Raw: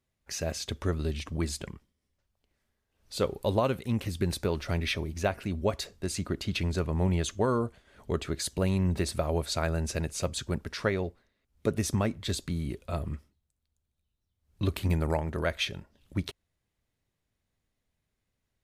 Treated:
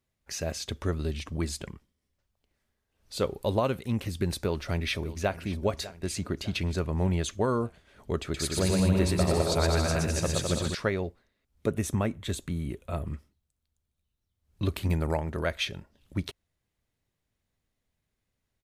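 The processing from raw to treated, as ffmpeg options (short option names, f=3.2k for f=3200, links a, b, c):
-filter_complex "[0:a]asplit=2[a][b];[b]afade=t=in:st=4.31:d=0.01,afade=t=out:st=5.38:d=0.01,aecho=0:1:600|1200|1800|2400|3000:0.158489|0.0871691|0.047943|0.0263687|0.0145028[c];[a][c]amix=inputs=2:normalize=0,asettb=1/sr,asplit=3[d][e][f];[d]atrim=end=8.224[g];[e]atrim=start=8.22:end=10.75,asetpts=PTS-STARTPTS,afade=t=in:d=0.004:c=qsin,afade=t=out:st=2.526:d=0.004:c=qsin,aecho=1:1:120|210|277.5|328.1|366.1|394.6|415.9:0.794|0.631|0.501|0.398|0.316|0.251|0.2,atrim=end_sample=111573[h];[f]atrim=start=10.746[i];[g][h]acrossfade=d=0.004:c1=hsin:c2=qsin[j];[j][i]acrossfade=d=0.004:c1=qsin:c2=hsin,asettb=1/sr,asplit=3[k][l][m];[k]atrim=end=11.664[n];[l]atrim=start=11.66:end=13.07,asetpts=PTS-STARTPTS,afade=t=in:d=0.004:c=qsin,afade=t=out:st=1.406:d=0.004:c=qsin,equalizer=f=4.8k:t=o:w=0.45:g=-11.5[o];[m]atrim=start=13.066[p];[n][o]acrossfade=d=0.004:c1=hsin:c2=qsin[q];[q][p]acrossfade=d=0.004:c1=qsin:c2=hsin"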